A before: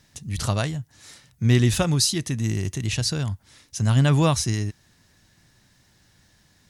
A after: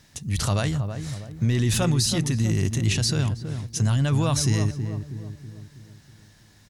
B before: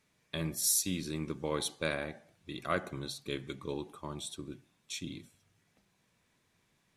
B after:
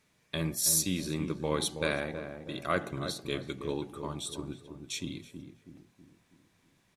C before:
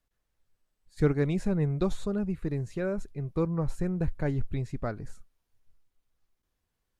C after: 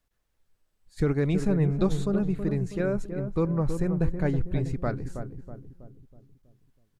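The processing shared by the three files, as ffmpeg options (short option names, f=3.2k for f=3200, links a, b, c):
-filter_complex "[0:a]acontrast=28,alimiter=limit=-13dB:level=0:latency=1:release=19,asplit=2[a][b];[b]adelay=323,lowpass=f=890:p=1,volume=-7dB,asplit=2[c][d];[d]adelay=323,lowpass=f=890:p=1,volume=0.51,asplit=2[e][f];[f]adelay=323,lowpass=f=890:p=1,volume=0.51,asplit=2[g][h];[h]adelay=323,lowpass=f=890:p=1,volume=0.51,asplit=2[i][j];[j]adelay=323,lowpass=f=890:p=1,volume=0.51,asplit=2[k][l];[l]adelay=323,lowpass=f=890:p=1,volume=0.51[m];[c][e][g][i][k][m]amix=inputs=6:normalize=0[n];[a][n]amix=inputs=2:normalize=0,volume=-2dB"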